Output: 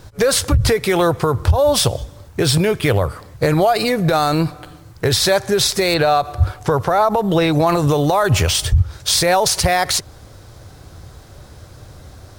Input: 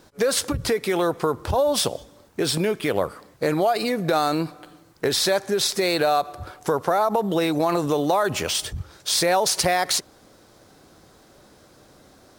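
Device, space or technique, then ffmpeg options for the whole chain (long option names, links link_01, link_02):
car stereo with a boomy subwoofer: -filter_complex "[0:a]lowshelf=frequency=150:width_type=q:width=1.5:gain=13,alimiter=limit=-13dB:level=0:latency=1:release=132,asettb=1/sr,asplit=3[link_01][link_02][link_03];[link_01]atrim=end=5.944[link_04];[link_02]atrim=start=5.94:end=7.67,asetpts=PTS-STARTPTS,afade=type=in:duration=0.004:curve=qsin,afade=type=out:start_time=1.726:duration=0.004:curve=qsin,acrossover=split=5400[link_05][link_06];[link_06]acompressor=threshold=-48dB:ratio=4:attack=1:release=60[link_07];[link_05][link_07]amix=inputs=2:normalize=0[link_08];[link_03]atrim=start=7.666[link_09];[link_04][link_08]acrossfade=duration=0.004:curve1=hsin:curve2=qsin[link_10];[link_10][link_09]acrossfade=duration=0.004:curve1=qsin:curve2=hsin,volume=7.5dB"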